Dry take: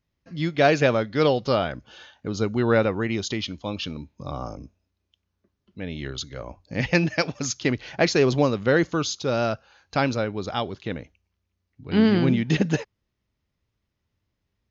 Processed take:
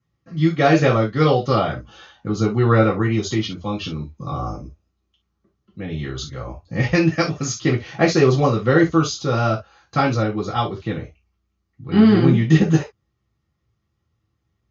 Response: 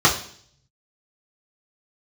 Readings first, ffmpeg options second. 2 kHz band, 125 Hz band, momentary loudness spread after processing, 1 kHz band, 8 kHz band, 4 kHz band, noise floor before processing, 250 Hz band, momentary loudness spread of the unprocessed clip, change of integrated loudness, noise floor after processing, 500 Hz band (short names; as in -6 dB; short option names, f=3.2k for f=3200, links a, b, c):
+2.0 dB, +8.5 dB, 15 LU, +6.0 dB, n/a, +1.0 dB, -79 dBFS, +6.0 dB, 16 LU, +5.0 dB, -73 dBFS, +3.0 dB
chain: -filter_complex "[1:a]atrim=start_sample=2205,atrim=end_sample=3528[a];[0:a][a]afir=irnorm=-1:irlink=0,volume=-17.5dB"